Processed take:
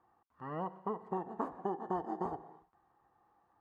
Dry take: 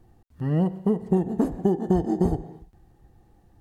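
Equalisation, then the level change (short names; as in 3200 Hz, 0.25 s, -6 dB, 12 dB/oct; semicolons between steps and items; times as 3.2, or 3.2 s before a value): band-pass 1100 Hz, Q 4.1; +5.5 dB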